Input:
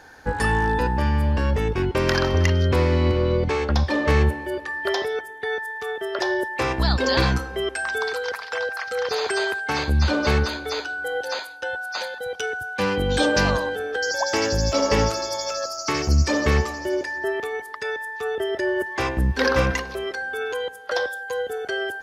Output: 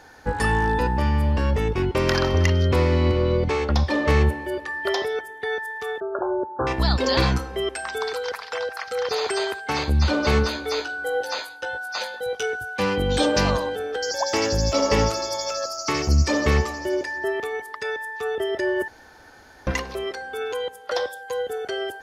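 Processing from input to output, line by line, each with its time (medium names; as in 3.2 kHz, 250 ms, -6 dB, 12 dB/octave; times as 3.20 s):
6.00–6.67 s: brick-wall FIR low-pass 1.7 kHz
10.31–12.80 s: doubling 18 ms -5.5 dB
18.88–19.67 s: room tone
whole clip: band-stop 1.6 kHz, Q 13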